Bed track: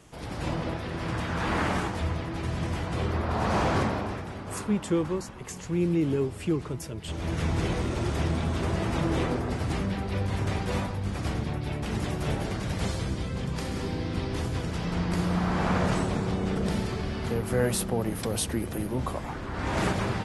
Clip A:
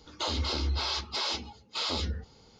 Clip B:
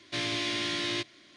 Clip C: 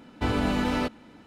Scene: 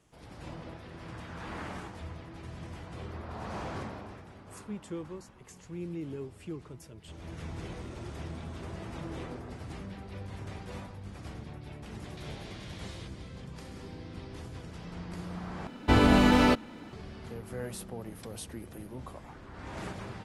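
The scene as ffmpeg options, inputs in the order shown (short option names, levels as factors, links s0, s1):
-filter_complex "[0:a]volume=0.224[s0];[2:a]acompressor=threshold=0.00562:ratio=6:attack=3.2:release=140:knee=1:detection=peak[s1];[3:a]acontrast=67[s2];[s0]asplit=2[s3][s4];[s3]atrim=end=15.674[s5];[s2]atrim=end=1.26,asetpts=PTS-STARTPTS,volume=0.794[s6];[s4]atrim=start=16.926[s7];[s1]atrim=end=1.36,asetpts=PTS-STARTPTS,volume=0.631,afade=t=in:d=0.004:c=hsin,afade=t=out:st=1.356:d=0.004:c=hsin,adelay=12050[s8];[s5][s6]acrossfade=d=0.004:c1=hsin:c2=hsin[s9];[s9][s7]acrossfade=d=0.004:c1=hsin:c2=hsin[s10];[s10][s8]amix=inputs=2:normalize=0"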